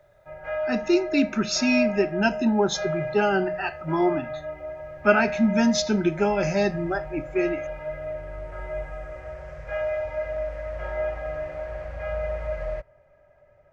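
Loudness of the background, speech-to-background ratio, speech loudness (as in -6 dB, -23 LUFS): -32.0 LUFS, 8.0 dB, -24.0 LUFS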